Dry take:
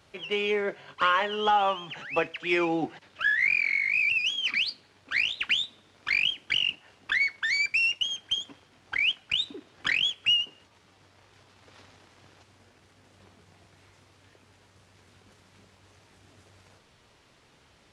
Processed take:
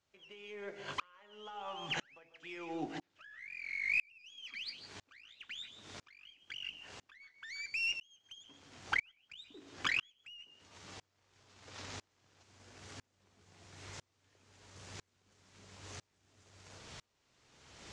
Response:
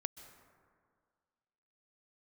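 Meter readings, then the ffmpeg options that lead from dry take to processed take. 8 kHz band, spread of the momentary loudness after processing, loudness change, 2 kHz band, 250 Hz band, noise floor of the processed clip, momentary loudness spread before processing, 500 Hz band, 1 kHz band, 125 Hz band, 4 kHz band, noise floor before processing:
-7.0 dB, 22 LU, -14.5 dB, -14.0 dB, -13.5 dB, -80 dBFS, 10 LU, -18.0 dB, -17.5 dB, -6.0 dB, -17.5 dB, -61 dBFS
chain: -filter_complex "[0:a]bandreject=f=55.66:t=h:w=4,bandreject=f=111.32:t=h:w=4,bandreject=f=166.98:t=h:w=4,bandreject=f=222.64:t=h:w=4,bandreject=f=278.3:t=h:w=4,bandreject=f=333.96:t=h:w=4,bandreject=f=389.62:t=h:w=4,bandreject=f=445.28:t=h:w=4,bandreject=f=500.94:t=h:w=4,bandreject=f=556.6:t=h:w=4,bandreject=f=612.26:t=h:w=4,bandreject=f=667.92:t=h:w=4,bandreject=f=723.58:t=h:w=4,bandreject=f=779.24:t=h:w=4,bandreject=f=834.9:t=h:w=4,bandreject=f=890.56:t=h:w=4,bandreject=f=946.22:t=h:w=4,acompressor=threshold=0.00891:ratio=6,lowpass=f=7000:t=q:w=2.2,aeval=exprs='0.0376*(cos(1*acos(clip(val(0)/0.0376,-1,1)))-cos(1*PI/2))+0.000335*(cos(8*acos(clip(val(0)/0.0376,-1,1)))-cos(8*PI/2))':c=same[s0];[1:a]atrim=start_sample=2205,afade=t=out:st=0.22:d=0.01,atrim=end_sample=10143[s1];[s0][s1]afir=irnorm=-1:irlink=0,aeval=exprs='val(0)*pow(10,-36*if(lt(mod(-1*n/s,1),2*abs(-1)/1000),1-mod(-1*n/s,1)/(2*abs(-1)/1000),(mod(-1*n/s,1)-2*abs(-1)/1000)/(1-2*abs(-1)/1000))/20)':c=same,volume=4.47"

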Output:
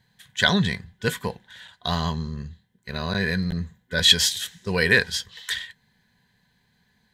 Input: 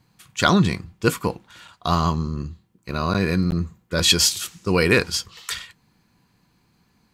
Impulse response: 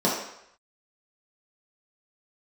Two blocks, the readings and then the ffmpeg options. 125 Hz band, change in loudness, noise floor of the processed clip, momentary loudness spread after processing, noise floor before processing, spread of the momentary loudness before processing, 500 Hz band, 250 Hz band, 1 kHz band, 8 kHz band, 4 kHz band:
-4.5 dB, -1.5 dB, -67 dBFS, 16 LU, -65 dBFS, 14 LU, -5.0 dB, -5.5 dB, -7.0 dB, -4.5 dB, +1.5 dB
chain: -af "superequalizer=6b=0.251:10b=0.447:11b=3.16:13b=2.51,volume=0.596"

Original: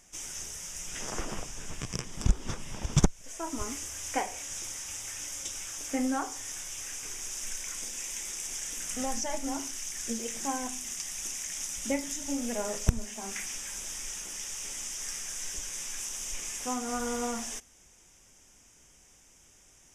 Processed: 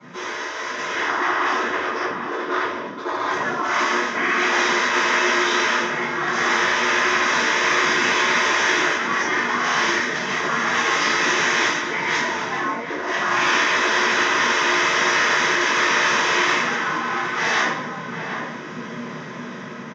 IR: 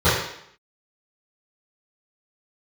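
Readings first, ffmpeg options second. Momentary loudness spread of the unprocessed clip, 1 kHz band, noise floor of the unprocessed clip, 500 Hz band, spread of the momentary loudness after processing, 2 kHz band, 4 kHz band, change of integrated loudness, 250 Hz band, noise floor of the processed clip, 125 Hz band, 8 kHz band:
6 LU, +20.0 dB, -59 dBFS, +14.5 dB, 11 LU, +26.5 dB, +16.5 dB, +14.5 dB, +8.5 dB, -33 dBFS, -2.0 dB, +2.0 dB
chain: -filter_complex "[0:a]bass=f=250:g=2,treble=f=4000:g=-13[s0];[1:a]atrim=start_sample=2205[s1];[s0][s1]afir=irnorm=-1:irlink=0,areverse,acompressor=threshold=0.126:ratio=8,areverse,afreqshift=71,afftfilt=real='re*lt(hypot(re,im),0.158)':imag='im*lt(hypot(re,im),0.158)':win_size=1024:overlap=0.75,highpass=f=140:w=0.5412,highpass=f=140:w=1.3066,equalizer=f=140:t=q:w=4:g=-9,equalizer=f=370:t=q:w=4:g=8,equalizer=f=540:t=q:w=4:g=-5,equalizer=f=1100:t=q:w=4:g=7,equalizer=f=1800:t=q:w=4:g=6,equalizer=f=4400:t=q:w=4:g=7,lowpass=f=5300:w=0.5412,lowpass=f=5300:w=1.3066,bandreject=f=400:w=12,asplit=2[s2][s3];[s3]adelay=758,volume=0.447,highshelf=f=4000:g=-17.1[s4];[s2][s4]amix=inputs=2:normalize=0,dynaudnorm=f=160:g=13:m=2.51"

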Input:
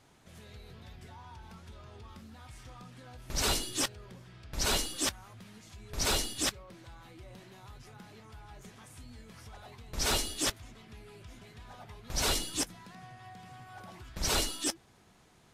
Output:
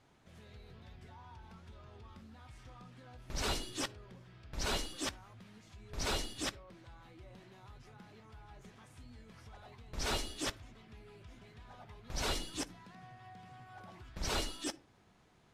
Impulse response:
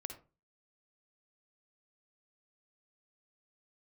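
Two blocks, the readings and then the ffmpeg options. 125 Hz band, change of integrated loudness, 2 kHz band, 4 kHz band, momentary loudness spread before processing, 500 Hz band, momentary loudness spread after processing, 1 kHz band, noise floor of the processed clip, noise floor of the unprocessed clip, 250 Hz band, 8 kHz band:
-4.0 dB, -7.0 dB, -5.0 dB, -7.0 dB, 22 LU, -4.0 dB, 20 LU, -4.5 dB, -66 dBFS, -62 dBFS, -4.0 dB, -10.0 dB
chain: -filter_complex "[0:a]highshelf=f=6700:g=-11.5,asplit=2[s0][s1];[1:a]atrim=start_sample=2205[s2];[s1][s2]afir=irnorm=-1:irlink=0,volume=0.266[s3];[s0][s3]amix=inputs=2:normalize=0,volume=0.531"

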